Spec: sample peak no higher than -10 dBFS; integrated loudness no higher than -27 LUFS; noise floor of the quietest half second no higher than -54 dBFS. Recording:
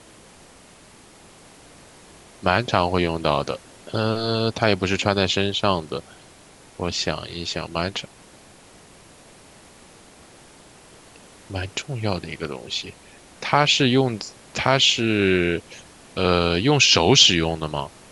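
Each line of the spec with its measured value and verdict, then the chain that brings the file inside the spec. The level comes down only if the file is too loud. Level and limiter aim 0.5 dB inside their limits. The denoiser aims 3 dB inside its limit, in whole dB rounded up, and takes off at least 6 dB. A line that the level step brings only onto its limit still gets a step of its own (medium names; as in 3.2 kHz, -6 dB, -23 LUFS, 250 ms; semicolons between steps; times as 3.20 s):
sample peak -1.5 dBFS: fail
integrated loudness -20.5 LUFS: fail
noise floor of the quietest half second -49 dBFS: fail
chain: trim -7 dB; peak limiter -10.5 dBFS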